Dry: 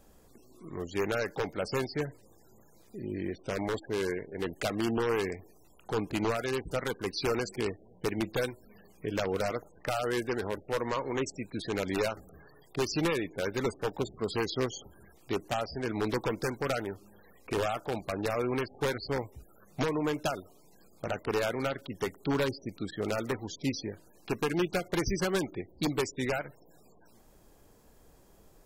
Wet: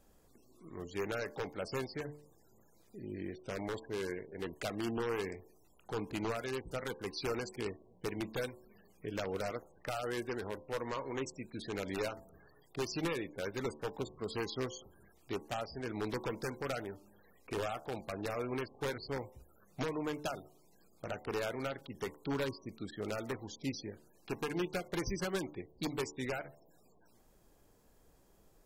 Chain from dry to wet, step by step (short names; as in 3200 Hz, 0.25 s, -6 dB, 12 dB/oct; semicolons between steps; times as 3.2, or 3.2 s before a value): de-hum 73.99 Hz, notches 15; gain -6.5 dB